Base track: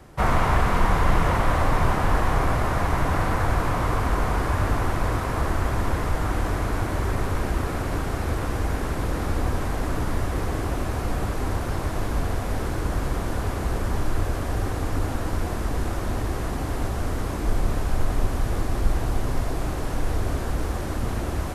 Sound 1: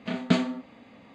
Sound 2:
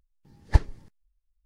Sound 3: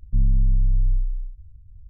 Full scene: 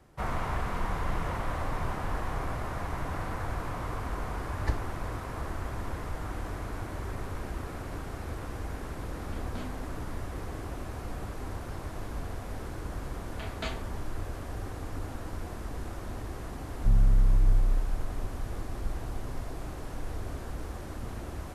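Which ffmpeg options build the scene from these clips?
-filter_complex "[1:a]asplit=2[a][b];[0:a]volume=-11.5dB[c];[2:a]alimiter=level_in=11.5dB:limit=-1dB:release=50:level=0:latency=1[d];[a]asoftclip=type=tanh:threshold=-20.5dB[e];[b]highpass=640[f];[d]atrim=end=1.45,asetpts=PTS-STARTPTS,volume=-15dB,afade=t=in:d=0.004:c=hsin,afade=t=out:st=1.446:d=0.004:c=hsin,adelay=4140[g];[e]atrim=end=1.14,asetpts=PTS-STARTPTS,volume=-15dB,afade=t=in:d=0.004:c=hsin,afade=t=out:st=1.136:d=0.004:c=hsin,adelay=9250[h];[f]atrim=end=1.14,asetpts=PTS-STARTPTS,volume=-6.5dB,afade=t=in:d=0.004:c=hsin,afade=t=out:st=1.136:d=0.004:c=hsin,adelay=587412S[i];[3:a]atrim=end=1.89,asetpts=PTS-STARTPTS,volume=-3.5dB,afade=t=in:d=0.004:c=hsin,afade=t=out:st=1.886:d=0.004:c=hsin,adelay=16720[j];[c][g][h][i][j]amix=inputs=5:normalize=0"

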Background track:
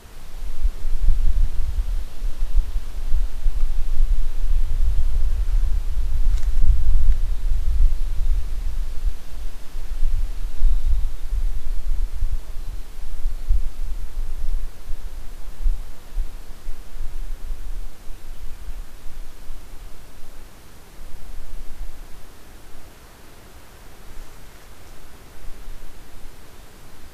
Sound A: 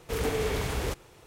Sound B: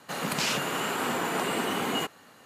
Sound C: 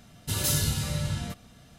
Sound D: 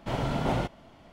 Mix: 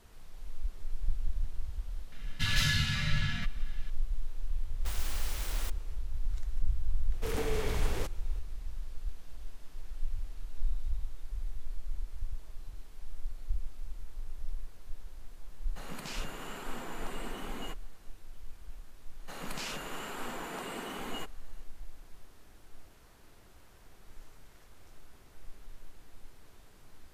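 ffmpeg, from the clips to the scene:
-filter_complex "[1:a]asplit=2[a][b];[2:a]asplit=2[c][d];[0:a]volume=-14.5dB[e];[3:a]firequalizer=gain_entry='entry(240,0);entry(330,-15);entry(1700,13);entry(8900,-13)':delay=0.05:min_phase=1[f];[a]aeval=exprs='(mod(37.6*val(0)+1,2)-1)/37.6':c=same[g];[c]lowshelf=f=190:g=5.5[h];[f]atrim=end=1.78,asetpts=PTS-STARTPTS,volume=-4dB,afade=t=in:d=0.004:c=hsin,afade=t=out:st=1.776:d=0.004:c=hsin,adelay=2120[i];[g]atrim=end=1.26,asetpts=PTS-STARTPTS,volume=-6.5dB,afade=t=in:d=0.1,afade=t=out:st=1.16:d=0.1,adelay=4760[j];[b]atrim=end=1.26,asetpts=PTS-STARTPTS,volume=-5.5dB,afade=t=in:d=0.004:c=hsin,afade=t=out:st=1.256:d=0.004:c=hsin,adelay=7130[k];[h]atrim=end=2.45,asetpts=PTS-STARTPTS,volume=-14.5dB,afade=t=in:d=0.004:c=hsin,afade=t=out:st=2.446:d=0.004:c=hsin,adelay=15670[l];[d]atrim=end=2.45,asetpts=PTS-STARTPTS,volume=-11.5dB,afade=t=in:d=0.004:c=hsin,afade=t=out:st=2.446:d=0.004:c=hsin,adelay=19190[m];[e][i][j][k][l][m]amix=inputs=6:normalize=0"

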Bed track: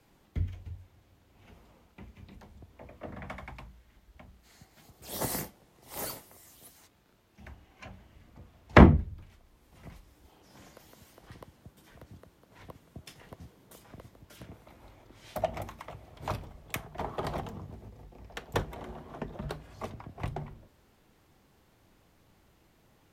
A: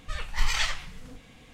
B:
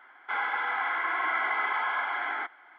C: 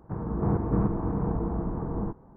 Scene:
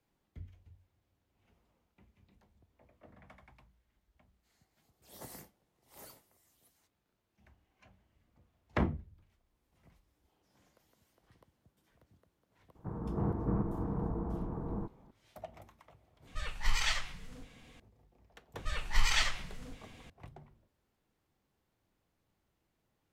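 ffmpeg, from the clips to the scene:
-filter_complex "[1:a]asplit=2[a][b];[0:a]volume=-16dB,asplit=2[c][d];[c]atrim=end=16.274[e];[a]atrim=end=1.53,asetpts=PTS-STARTPTS,volume=-5dB[f];[d]atrim=start=17.796[g];[3:a]atrim=end=2.36,asetpts=PTS-STARTPTS,volume=-7.5dB,afade=t=in:d=0.004:c=hsin,afade=t=out:st=2.356:d=0.004:c=hsin,adelay=12750[h];[b]atrim=end=1.53,asetpts=PTS-STARTPTS,volume=-2.5dB,afade=t=in:d=0.004:c=hsin,afade=t=out:st=1.526:d=0.004:c=hsin,adelay=18570[i];[e][f]acrossfade=d=0.004:c1=hsin:c2=hsin[j];[j][g]acrossfade=d=0.004:c1=hsin:c2=hsin[k];[k][h][i]amix=inputs=3:normalize=0"

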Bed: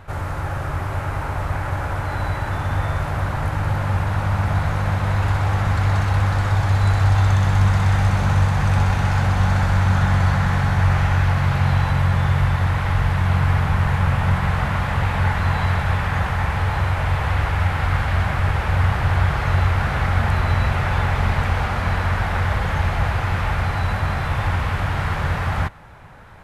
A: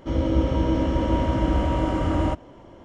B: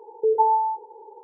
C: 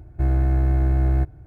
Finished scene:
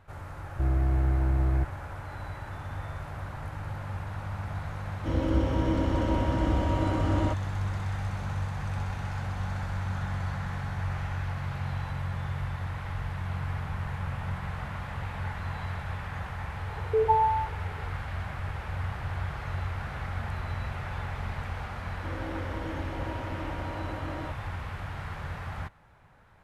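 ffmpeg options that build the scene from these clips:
-filter_complex "[1:a]asplit=2[a][b];[0:a]volume=-15dB[c];[b]highpass=290,lowpass=5.8k[d];[3:a]atrim=end=1.46,asetpts=PTS-STARTPTS,volume=-6dB,afade=t=in:d=0.004:c=hsin,afade=t=out:st=1.456:d=0.004:c=hsin,adelay=400[e];[a]atrim=end=2.84,asetpts=PTS-STARTPTS,volume=-5dB,afade=t=in:d=0.004:c=hsin,afade=t=out:st=2.836:d=0.004:c=hsin,adelay=4990[f];[2:a]atrim=end=1.23,asetpts=PTS-STARTPTS,volume=-4dB,afade=t=in:d=0.004:c=hsin,afade=t=out:st=1.226:d=0.004:c=hsin,adelay=16700[g];[d]atrim=end=2.84,asetpts=PTS-STARTPTS,volume=-12.5dB,afade=t=in:d=0.004:c=hsin,afade=t=out:st=2.836:d=0.004:c=hsin,adelay=21970[h];[c][e][f][g][h]amix=inputs=5:normalize=0"

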